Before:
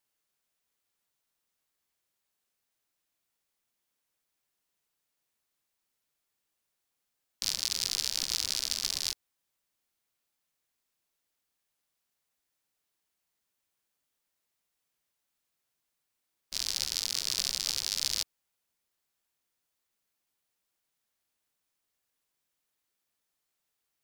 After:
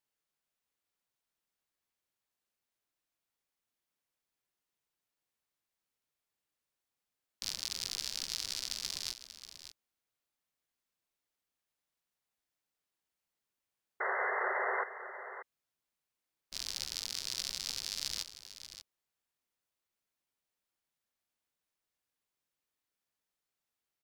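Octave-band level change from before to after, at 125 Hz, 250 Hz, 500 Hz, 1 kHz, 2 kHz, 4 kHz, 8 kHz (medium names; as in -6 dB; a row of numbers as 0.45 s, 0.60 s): -4.5 dB, 0.0 dB, +15.0 dB, +14.5 dB, +7.0 dB, -6.5 dB, -7.5 dB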